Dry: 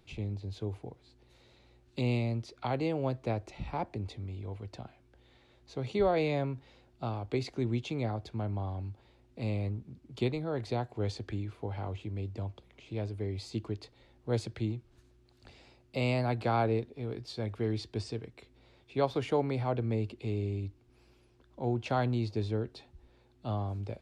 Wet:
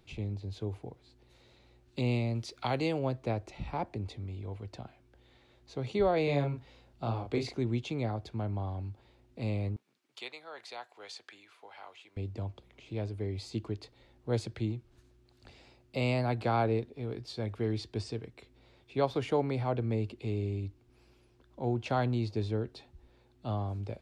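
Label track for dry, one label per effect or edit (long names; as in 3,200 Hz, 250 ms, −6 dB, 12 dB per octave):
2.350000	2.990000	high-shelf EQ 2,100 Hz +8.5 dB
6.240000	7.570000	double-tracking delay 35 ms −4 dB
9.760000	12.170000	high-pass filter 1,100 Hz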